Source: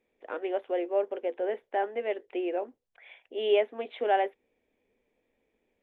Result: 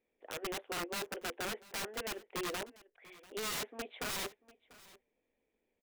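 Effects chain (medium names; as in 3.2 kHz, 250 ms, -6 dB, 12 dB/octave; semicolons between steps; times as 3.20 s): dynamic bell 1.9 kHz, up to +4 dB, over -40 dBFS, Q 0.83; integer overflow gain 26 dB; delay 692 ms -20.5 dB; trim -7 dB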